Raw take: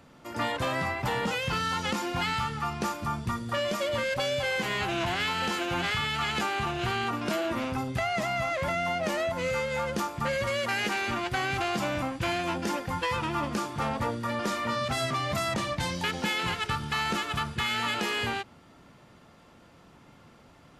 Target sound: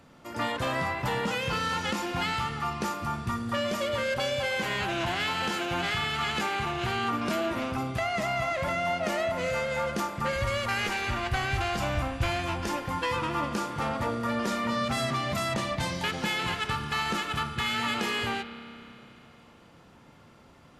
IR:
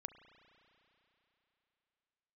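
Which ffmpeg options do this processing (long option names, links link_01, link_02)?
-filter_complex "[0:a]asplit=3[link_01][link_02][link_03];[link_01]afade=type=out:start_time=10.34:duration=0.02[link_04];[link_02]asubboost=boost=7.5:cutoff=75,afade=type=in:start_time=10.34:duration=0.02,afade=type=out:start_time=12.68:duration=0.02[link_05];[link_03]afade=type=in:start_time=12.68:duration=0.02[link_06];[link_04][link_05][link_06]amix=inputs=3:normalize=0[link_07];[1:a]atrim=start_sample=2205,asetrate=48510,aresample=44100[link_08];[link_07][link_08]afir=irnorm=-1:irlink=0,volume=5.5dB"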